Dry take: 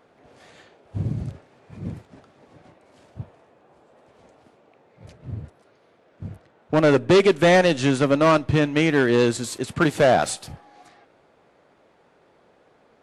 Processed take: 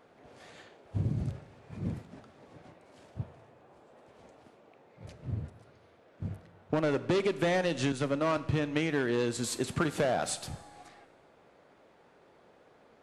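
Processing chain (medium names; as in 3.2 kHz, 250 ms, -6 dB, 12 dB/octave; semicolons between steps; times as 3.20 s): compression 10:1, threshold -23 dBFS, peak gain reduction 11.5 dB; Schroeder reverb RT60 1.2 s, combs from 32 ms, DRR 15 dB; 7.92–8.37 s: three bands expanded up and down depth 100%; trim -2.5 dB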